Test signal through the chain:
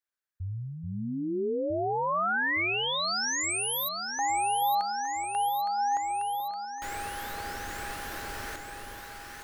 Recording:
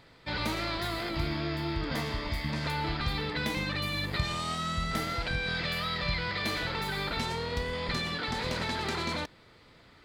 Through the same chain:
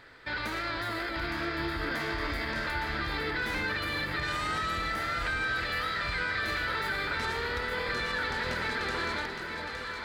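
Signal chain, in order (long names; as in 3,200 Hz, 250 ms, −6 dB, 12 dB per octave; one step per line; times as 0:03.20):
graphic EQ with 15 bands 160 Hz −8 dB, 400 Hz +3 dB, 1,600 Hz +12 dB
brickwall limiter −25 dBFS
on a send: delay that swaps between a low-pass and a high-pass 432 ms, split 820 Hz, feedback 79%, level −4 dB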